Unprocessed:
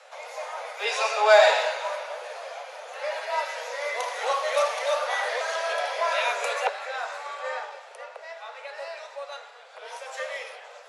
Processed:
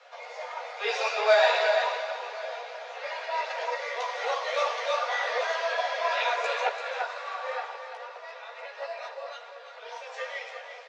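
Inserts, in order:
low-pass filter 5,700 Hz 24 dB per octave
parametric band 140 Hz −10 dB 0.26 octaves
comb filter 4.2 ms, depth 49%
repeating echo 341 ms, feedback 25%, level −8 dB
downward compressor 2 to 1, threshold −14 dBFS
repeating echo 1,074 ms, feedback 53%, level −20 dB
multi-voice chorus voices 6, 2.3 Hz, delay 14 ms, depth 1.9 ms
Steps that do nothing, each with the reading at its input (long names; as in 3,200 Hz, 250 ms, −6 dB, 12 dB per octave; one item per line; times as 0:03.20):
parametric band 140 Hz: nothing at its input below 400 Hz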